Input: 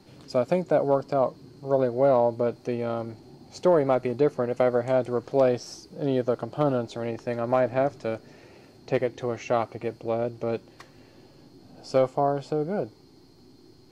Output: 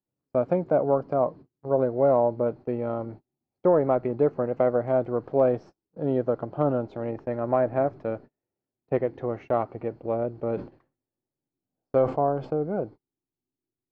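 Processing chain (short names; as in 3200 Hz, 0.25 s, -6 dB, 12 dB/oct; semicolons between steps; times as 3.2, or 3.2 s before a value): LPF 1400 Hz 12 dB/oct; gate -40 dBFS, range -38 dB; 10.32–12.58 sustainer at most 150 dB/s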